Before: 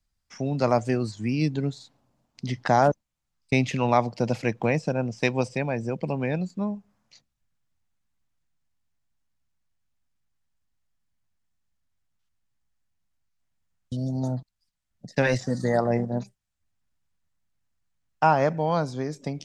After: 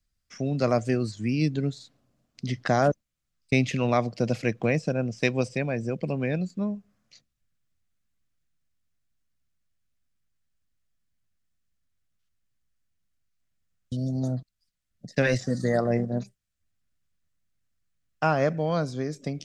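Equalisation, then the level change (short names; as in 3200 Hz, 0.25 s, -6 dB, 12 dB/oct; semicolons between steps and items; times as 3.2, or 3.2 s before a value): bell 890 Hz -13.5 dB 0.34 oct; 0.0 dB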